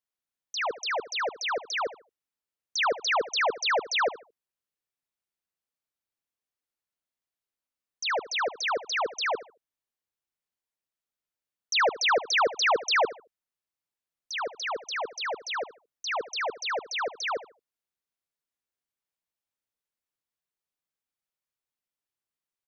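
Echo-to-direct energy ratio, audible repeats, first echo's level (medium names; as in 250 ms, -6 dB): -15.5 dB, 2, -16.0 dB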